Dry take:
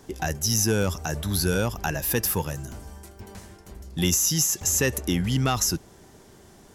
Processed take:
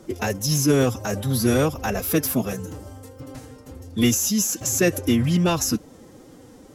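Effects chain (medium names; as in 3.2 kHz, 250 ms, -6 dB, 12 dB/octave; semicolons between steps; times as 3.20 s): small resonant body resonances 220/360/550 Hz, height 7 dB, ringing for 20 ms; formant-preserving pitch shift +5 st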